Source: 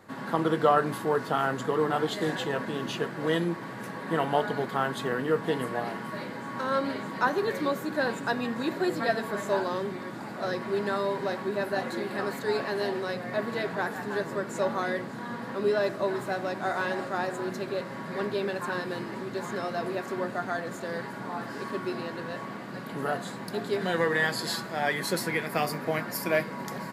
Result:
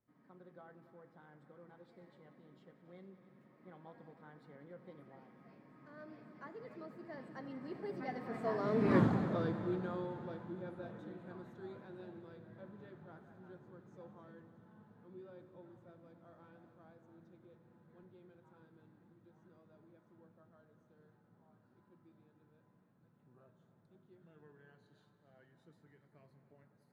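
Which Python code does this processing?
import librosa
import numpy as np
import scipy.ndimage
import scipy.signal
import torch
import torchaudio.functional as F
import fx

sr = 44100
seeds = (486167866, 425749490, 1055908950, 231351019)

y = fx.doppler_pass(x, sr, speed_mps=38, closest_m=2.5, pass_at_s=8.97)
y = fx.riaa(y, sr, side='playback')
y = fx.echo_heads(y, sr, ms=94, heads='all three', feedback_pct=58, wet_db=-18.0)
y = F.gain(torch.from_numpy(y), 6.5).numpy()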